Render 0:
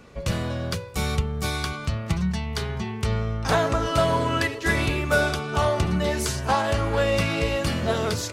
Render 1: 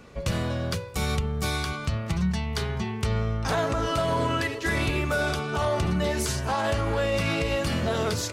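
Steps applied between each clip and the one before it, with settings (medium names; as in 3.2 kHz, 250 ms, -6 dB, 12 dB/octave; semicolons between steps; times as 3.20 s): peak limiter -16.5 dBFS, peak gain reduction 7 dB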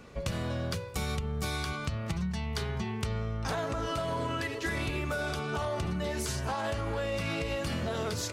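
compression, threshold -27 dBFS, peak gain reduction 6.5 dB; trim -2 dB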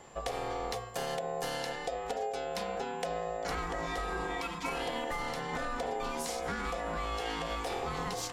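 ring modulator 610 Hz; whistle 7.3 kHz -61 dBFS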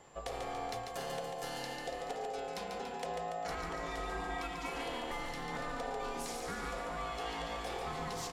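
flange 0.47 Hz, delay 6.5 ms, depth 3.5 ms, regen -81%; on a send: feedback delay 143 ms, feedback 59%, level -5 dB; on the sum: trim -1 dB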